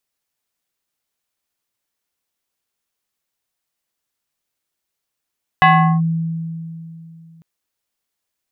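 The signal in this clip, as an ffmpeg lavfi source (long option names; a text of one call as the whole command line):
ffmpeg -f lavfi -i "aevalsrc='0.501*pow(10,-3*t/2.93)*sin(2*PI*164*t+2*clip(1-t/0.39,0,1)*sin(2*PI*5.62*164*t))':duration=1.8:sample_rate=44100" out.wav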